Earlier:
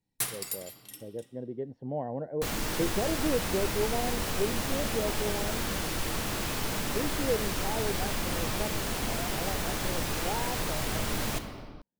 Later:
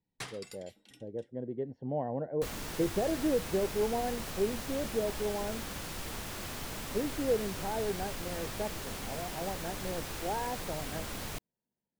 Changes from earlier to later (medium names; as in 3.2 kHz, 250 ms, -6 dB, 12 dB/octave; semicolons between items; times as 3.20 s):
first sound: add distance through air 110 m; second sound -4.5 dB; reverb: off